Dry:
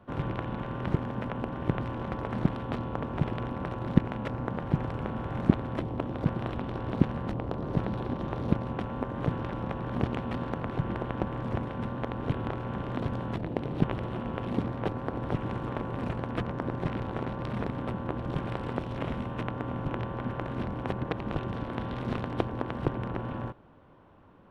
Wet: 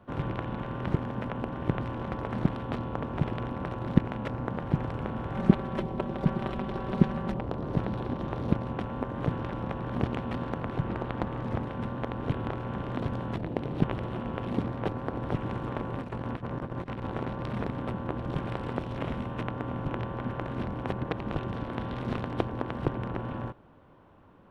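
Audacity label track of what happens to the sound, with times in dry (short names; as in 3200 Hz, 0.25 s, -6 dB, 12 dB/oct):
5.340000	7.410000	comb 5.2 ms
10.870000	11.660000	Doppler distortion depth 0.5 ms
16.020000	17.070000	negative-ratio compressor -35 dBFS, ratio -0.5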